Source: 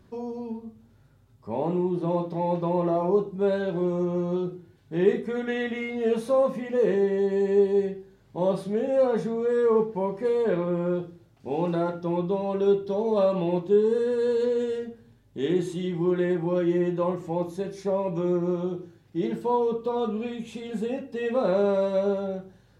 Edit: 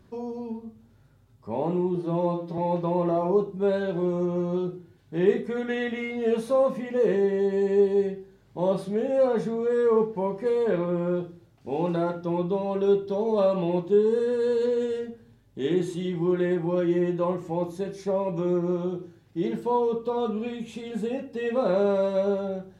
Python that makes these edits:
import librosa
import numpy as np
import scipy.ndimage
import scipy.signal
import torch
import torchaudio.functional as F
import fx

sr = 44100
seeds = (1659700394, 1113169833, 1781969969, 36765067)

y = fx.edit(x, sr, fx.stretch_span(start_s=1.95, length_s=0.42, factor=1.5), tone=tone)